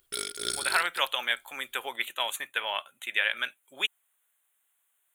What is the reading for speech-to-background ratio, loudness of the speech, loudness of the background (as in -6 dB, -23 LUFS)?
2.0 dB, -30.0 LUFS, -32.0 LUFS